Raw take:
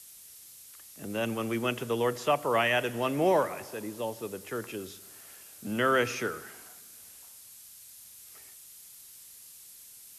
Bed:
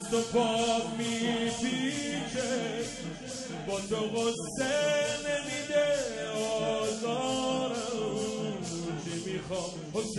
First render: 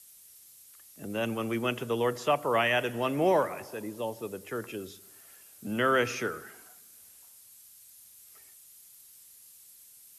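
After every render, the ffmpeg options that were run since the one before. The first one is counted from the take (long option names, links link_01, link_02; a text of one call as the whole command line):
ffmpeg -i in.wav -af "afftdn=noise_reduction=6:noise_floor=-51" out.wav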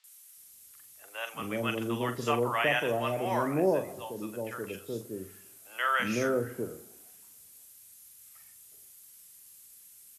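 ffmpeg -i in.wav -filter_complex "[0:a]asplit=2[link_01][link_02];[link_02]adelay=42,volume=-9.5dB[link_03];[link_01][link_03]amix=inputs=2:normalize=0,acrossover=split=710|4400[link_04][link_05][link_06];[link_06]adelay=40[link_07];[link_04]adelay=370[link_08];[link_08][link_05][link_07]amix=inputs=3:normalize=0" out.wav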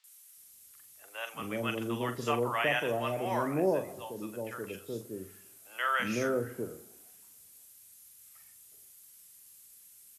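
ffmpeg -i in.wav -af "volume=-2dB" out.wav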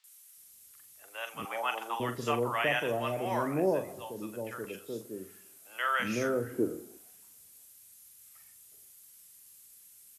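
ffmpeg -i in.wav -filter_complex "[0:a]asettb=1/sr,asplit=3[link_01][link_02][link_03];[link_01]atrim=end=1.454[link_04];[link_02]atrim=start=1.45:end=2,asetpts=PTS-STARTPTS,afade=type=in:duration=0.004:curve=qsin,afade=type=out:start_time=0.546:duration=0.004:curve=qsin,highpass=frequency=830:width_type=q:width=6.7[link_05];[link_03]atrim=start=1.996[link_06];[link_04][link_05]acrossfade=duration=0.004:curve1=hsin:curve2=qsin[link_07];[link_07][link_06]acrossfade=duration=0.004:curve1=qsin:curve2=hsin,asettb=1/sr,asplit=3[link_08][link_09][link_10];[link_08]atrim=end=4.654[link_11];[link_09]atrim=start=4.65:end=5.68,asetpts=PTS-STARTPTS,afade=type=in:duration=0.004:curve=qsin,afade=type=out:start_time=1.026:duration=0.004:curve=qsin,highpass=150[link_12];[link_10]atrim=start=5.676[link_13];[link_11][link_12]acrossfade=duration=0.004:curve1=hsin:curve2=qsin[link_14];[link_14][link_13]acrossfade=duration=0.004:curve1=qsin:curve2=hsin,asettb=1/sr,asplit=3[link_15][link_16][link_17];[link_15]atrim=end=6.534[link_18];[link_16]atrim=start=6.53:end=6.98,asetpts=PTS-STARTPTS,afade=type=in:duration=0.004:curve=qsin,afade=type=out:start_time=0.446:duration=0.004:curve=qsin,equalizer=frequency=310:width_type=o:width=0.77:gain=13[link_19];[link_17]atrim=start=6.976[link_20];[link_18][link_19]acrossfade=duration=0.004:curve1=hsin:curve2=qsin[link_21];[link_21][link_20]acrossfade=duration=0.004:curve1=qsin:curve2=hsin" out.wav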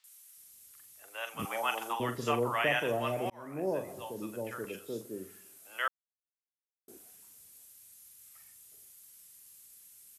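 ffmpeg -i in.wav -filter_complex "[0:a]asettb=1/sr,asplit=3[link_01][link_02][link_03];[link_01]atrim=end=1.394[link_04];[link_02]atrim=start=1.39:end=1.93,asetpts=PTS-STARTPTS,afade=type=in:duration=0.004:curve=qsin,afade=type=out:start_time=0.536:duration=0.004:curve=qsin,bass=frequency=250:gain=8,treble=frequency=4000:gain=6[link_05];[link_03]atrim=start=1.926[link_06];[link_04][link_05]acrossfade=duration=0.004:curve1=hsin:curve2=qsin[link_07];[link_07][link_06]acrossfade=duration=0.004:curve1=qsin:curve2=hsin,asplit=4[link_08][link_09][link_10][link_11];[link_08]atrim=end=3.3,asetpts=PTS-STARTPTS,afade=type=out:start_time=3.296:duration=0.004:curve=hsin[link_12];[link_09]atrim=start=3.3:end=5.88,asetpts=PTS-STARTPTS,afade=type=in:duration=0.68,afade=type=out:start_time=2.576:duration=0.004:curve=hsin[link_13];[link_10]atrim=start=5.88:end=6.88,asetpts=PTS-STARTPTS,volume=0[link_14];[link_11]atrim=start=6.88,asetpts=PTS-STARTPTS,afade=type=in:duration=0.004:curve=hsin[link_15];[link_12][link_13][link_14][link_15]concat=n=4:v=0:a=1" out.wav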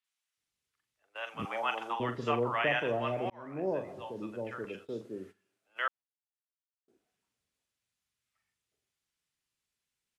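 ffmpeg -i in.wav -af "agate=range=-16dB:threshold=-48dB:ratio=16:detection=peak,lowpass=3500" out.wav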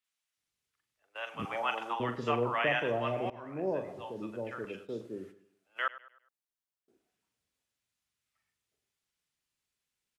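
ffmpeg -i in.wav -filter_complex "[0:a]asplit=2[link_01][link_02];[link_02]adelay=102,lowpass=frequency=5000:poles=1,volume=-16.5dB,asplit=2[link_03][link_04];[link_04]adelay=102,lowpass=frequency=5000:poles=1,volume=0.41,asplit=2[link_05][link_06];[link_06]adelay=102,lowpass=frequency=5000:poles=1,volume=0.41,asplit=2[link_07][link_08];[link_08]adelay=102,lowpass=frequency=5000:poles=1,volume=0.41[link_09];[link_01][link_03][link_05][link_07][link_09]amix=inputs=5:normalize=0" out.wav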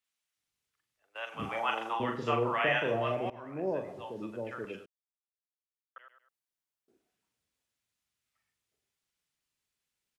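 ffmpeg -i in.wav -filter_complex "[0:a]asplit=3[link_01][link_02][link_03];[link_01]afade=type=out:start_time=1.31:duration=0.02[link_04];[link_02]asplit=2[link_05][link_06];[link_06]adelay=36,volume=-5dB[link_07];[link_05][link_07]amix=inputs=2:normalize=0,afade=type=in:start_time=1.31:duration=0.02,afade=type=out:start_time=3.15:duration=0.02[link_08];[link_03]afade=type=in:start_time=3.15:duration=0.02[link_09];[link_04][link_08][link_09]amix=inputs=3:normalize=0,asplit=3[link_10][link_11][link_12];[link_10]atrim=end=4.86,asetpts=PTS-STARTPTS,afade=type=out:start_time=4.856:duration=0.004:curve=hsin[link_13];[link_11]atrim=start=4.86:end=5.96,asetpts=PTS-STARTPTS,volume=0[link_14];[link_12]atrim=start=5.96,asetpts=PTS-STARTPTS,afade=type=in:duration=0.004:curve=hsin[link_15];[link_13][link_14][link_15]concat=n=3:v=0:a=1" out.wav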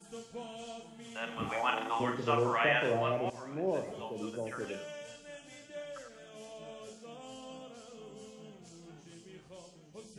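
ffmpeg -i in.wav -i bed.wav -filter_complex "[1:a]volume=-17.5dB[link_01];[0:a][link_01]amix=inputs=2:normalize=0" out.wav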